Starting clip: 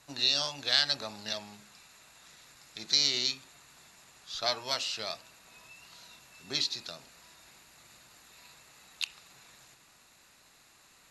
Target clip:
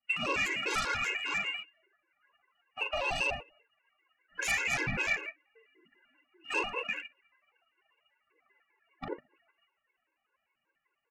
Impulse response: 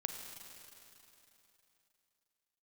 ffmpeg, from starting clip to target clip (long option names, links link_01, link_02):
-filter_complex "[0:a]lowpass=frequency=2600:width_type=q:width=0.5098,lowpass=frequency=2600:width_type=q:width=0.6013,lowpass=frequency=2600:width_type=q:width=0.9,lowpass=frequency=2600:width_type=q:width=2.563,afreqshift=-3000,bandreject=frequency=50:width_type=h:width=6,bandreject=frequency=100:width_type=h:width=6,bandreject=frequency=150:width_type=h:width=6,bandreject=frequency=200:width_type=h:width=6,bandreject=frequency=250:width_type=h:width=6,bandreject=frequency=300:width_type=h:width=6,bandreject=frequency=350:width_type=h:width=6,aecho=1:1:40|88|145.6|214.7|297.7:0.631|0.398|0.251|0.158|0.1,afftdn=noise_reduction=20:noise_floor=-52,asplit=2[link_01][link_02];[link_02]aeval=exprs='0.158*sin(PI/2*7.08*val(0)/0.158)':channel_layout=same,volume=-6.5dB[link_03];[link_01][link_03]amix=inputs=2:normalize=0,acompressor=threshold=-36dB:ratio=2,aphaser=in_gain=1:out_gain=1:delay=3.3:decay=0.42:speed=0.84:type=triangular,areverse,acompressor=mode=upward:threshold=-51dB:ratio=2.5,areverse,agate=range=-22dB:threshold=-36dB:ratio=16:detection=peak,afftfilt=real='re*gt(sin(2*PI*5.1*pts/sr)*(1-2*mod(floor(b*sr/1024/280),2)),0)':imag='im*gt(sin(2*PI*5.1*pts/sr)*(1-2*mod(floor(b*sr/1024/280),2)),0)':win_size=1024:overlap=0.75,volume=3dB"